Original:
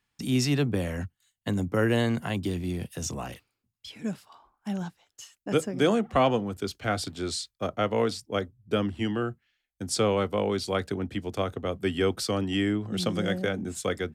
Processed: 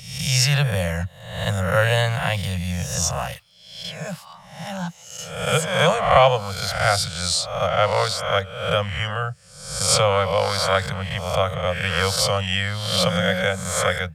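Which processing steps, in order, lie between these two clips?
spectral swells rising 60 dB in 0.77 s; elliptic band-stop 170–530 Hz, stop band 40 dB; gain +8.5 dB

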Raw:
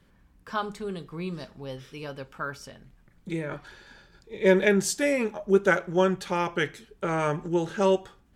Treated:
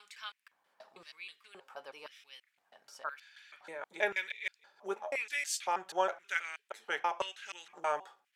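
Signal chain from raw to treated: slices in reverse order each 0.16 s, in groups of 5; LFO high-pass square 0.97 Hz 760–2300 Hz; gain -8 dB

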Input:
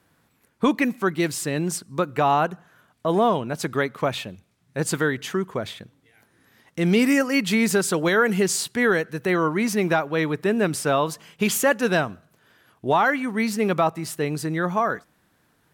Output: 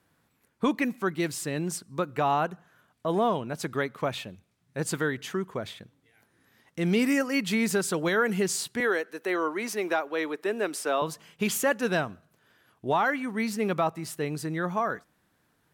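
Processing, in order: 8.8–11.02 HPF 290 Hz 24 dB/oct; gain -5.5 dB

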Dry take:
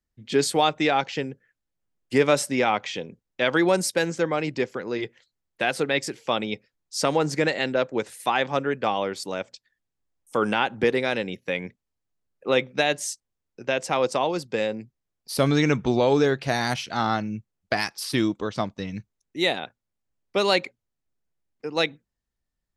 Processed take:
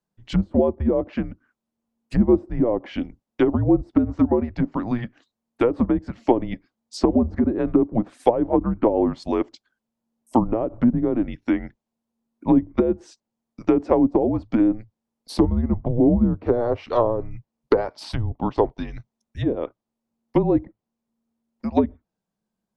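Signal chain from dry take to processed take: treble ducked by the level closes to 500 Hz, closed at -19 dBFS; band shelf 770 Hz +11.5 dB; frequency shift -230 Hz; gain -1.5 dB

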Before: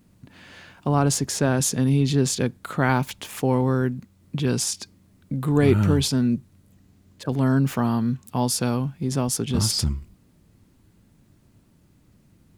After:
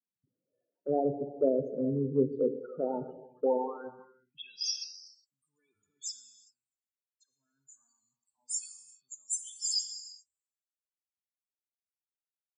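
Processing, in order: compressor 1.5:1, threshold -27 dBFS, peak gain reduction 5.5 dB; band-pass sweep 490 Hz -> 7400 Hz, 3.39–4.96; loudest bins only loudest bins 8; non-linear reverb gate 0.43 s flat, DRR 6 dB; three-band expander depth 100%; gain +1 dB

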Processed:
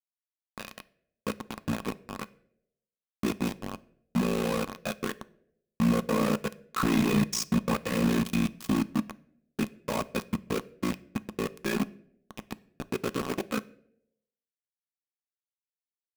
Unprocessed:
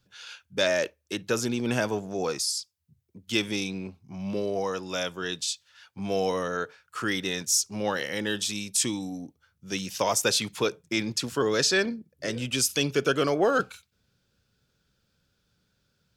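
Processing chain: Doppler pass-by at 6.91, 10 m/s, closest 4.9 m; notch 710 Hz, Q 12; de-hum 92.15 Hz, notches 30; low-pass opened by the level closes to 780 Hz, open at -39 dBFS; LPF 3500 Hz 6 dB/oct; tilt -2.5 dB/oct; in parallel at 0 dB: level quantiser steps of 22 dB; on the sum: step gate "xx.x.xxxxxxx.x" 170 bpm -60 dB; companded quantiser 2-bit; ring modulator 29 Hz; small resonant body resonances 210/1100/2500 Hz, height 11 dB, ringing for 45 ms; reverb RT60 0.80 s, pre-delay 3 ms, DRR 16.5 dB

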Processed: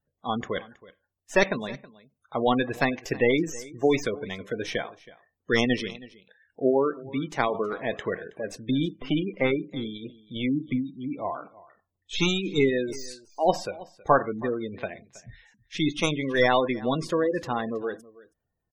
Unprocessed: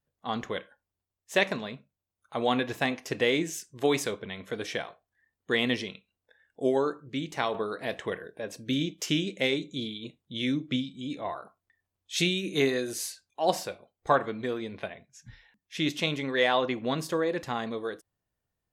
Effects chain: tracing distortion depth 0.15 ms; 8.94–11.19 tone controls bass -2 dB, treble -13 dB; spectral gate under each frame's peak -20 dB strong; echo 0.322 s -20.5 dB; gain +3.5 dB

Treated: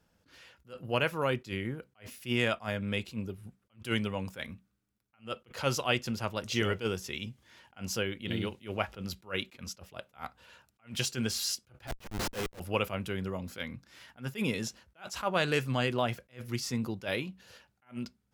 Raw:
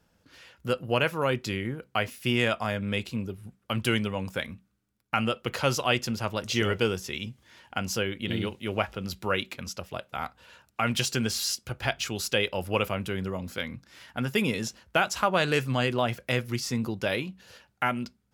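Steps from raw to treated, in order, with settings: 11.87–12.6 Schmitt trigger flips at -29.5 dBFS; attack slew limiter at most 250 dB/s; gain -3.5 dB

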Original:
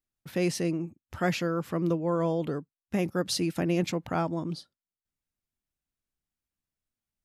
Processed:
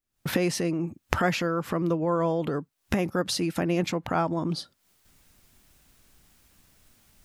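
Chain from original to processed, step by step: recorder AGC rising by 73 dB/s; dynamic EQ 1100 Hz, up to +5 dB, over -42 dBFS, Q 0.71

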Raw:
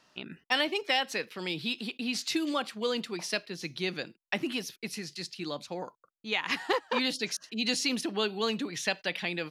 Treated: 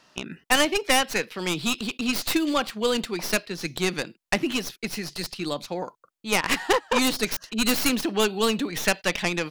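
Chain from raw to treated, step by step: tracing distortion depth 0.18 ms; gain +6.5 dB

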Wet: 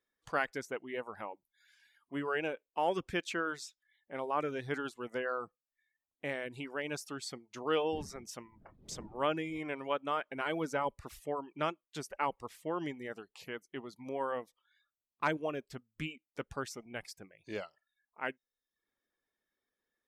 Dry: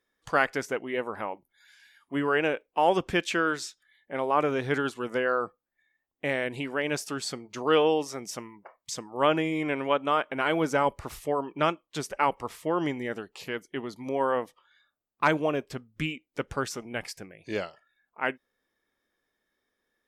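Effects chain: 7.92–9.58 wind noise 280 Hz -37 dBFS; reverb removal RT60 0.52 s; gain -8.5 dB

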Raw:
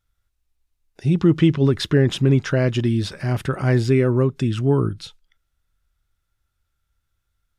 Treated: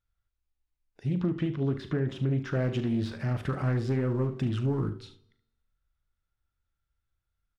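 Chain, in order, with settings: de-esser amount 75%; high shelf 4700 Hz -10.5 dB; de-hum 95.75 Hz, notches 7; 2.55–4.9 sample leveller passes 1; compressor, threshold -16 dBFS, peak gain reduction 6.5 dB; resonator 230 Hz, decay 1 s, mix 40%; early reflections 39 ms -12 dB, 73 ms -13.5 dB; reverb RT60 0.70 s, pre-delay 24 ms, DRR 16.5 dB; Doppler distortion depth 0.22 ms; gain -4.5 dB

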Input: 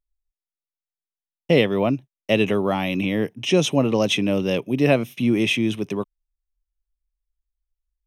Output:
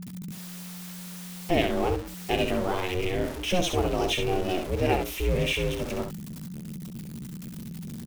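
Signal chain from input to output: zero-crossing step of -24 dBFS; ring modulator 180 Hz; early reflections 13 ms -14.5 dB, 66 ms -7 dB; gain -5.5 dB

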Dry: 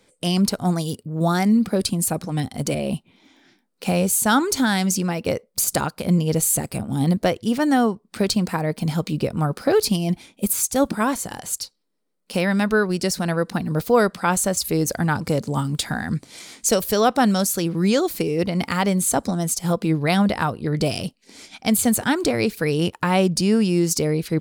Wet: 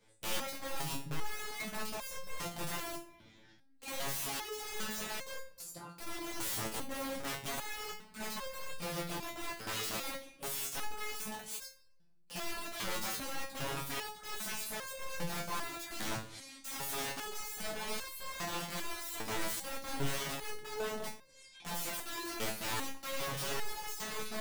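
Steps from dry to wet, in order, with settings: 0.74–1.79 notch 460 Hz, Q 14; 20.63–21.04 Chebyshev low-pass 1700 Hz, order 8; limiter -16.5 dBFS, peak gain reduction 11.5 dB; 5.48–5.96 compressor 4:1, threshold -36 dBFS, peak gain reduction 11 dB; chorus 2.9 Hz, delay 15.5 ms, depth 6.6 ms; wrapped overs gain 27.5 dB; shoebox room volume 500 m³, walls mixed, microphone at 0.33 m; stepped resonator 2.5 Hz 110–530 Hz; gain +5 dB

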